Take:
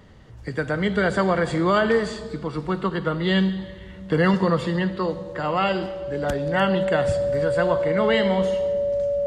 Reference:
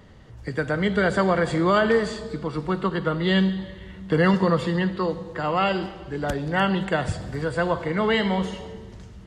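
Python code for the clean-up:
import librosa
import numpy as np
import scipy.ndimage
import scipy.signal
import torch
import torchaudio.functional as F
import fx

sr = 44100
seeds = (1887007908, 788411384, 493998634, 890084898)

y = fx.notch(x, sr, hz=570.0, q=30.0)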